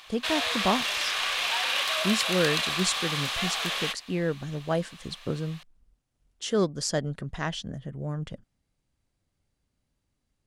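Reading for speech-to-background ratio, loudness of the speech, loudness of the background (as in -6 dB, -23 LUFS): -4.5 dB, -31.0 LUFS, -26.5 LUFS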